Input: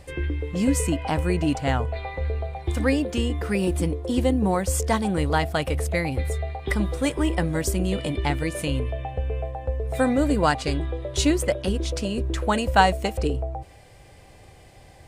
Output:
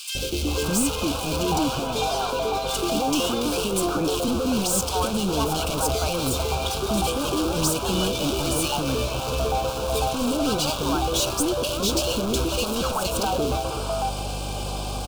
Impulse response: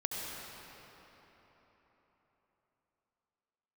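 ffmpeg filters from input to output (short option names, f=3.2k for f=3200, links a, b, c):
-filter_complex "[0:a]asettb=1/sr,asplit=3[a][b][c];[a]atrim=end=1.644[d];[b]atrim=start=1.64:end=4.13,asetpts=PTS-STARTPTS,afade=t=in:d=0.004:c=qsin,afade=t=out:st=2.486:d=0.004:c=qsin,highpass=f=170:w=0.5412,highpass=f=170:w=1.3066[e];[c]atrim=start=4.126[f];[d][e]acrossfade=d=0.004:c1=hsin:c2=qsin[g];[g][f]acrossfade=d=0.004:c1=qsin:c2=hsin,acompressor=threshold=-24dB:ratio=5,acrusher=bits=4:mode=log:mix=0:aa=0.000001,asplit=2[h][i];[i]highpass=f=720:p=1,volume=27dB,asoftclip=type=tanh:threshold=-14dB[j];[h][j]amix=inputs=2:normalize=0,lowpass=f=5.6k:p=1,volume=-6dB,aeval=exprs='val(0)+0.0178*(sin(2*PI*50*n/s)+sin(2*PI*2*50*n/s)/2+sin(2*PI*3*50*n/s)/3+sin(2*PI*4*50*n/s)/4+sin(2*PI*5*50*n/s)/5)':c=same,asoftclip=type=tanh:threshold=-27dB,asuperstop=centerf=1900:order=4:qfactor=1.7,acrossover=split=570|2000[k][l][m];[k]adelay=150[n];[l]adelay=470[o];[n][o][m]amix=inputs=3:normalize=0,volume=6.5dB"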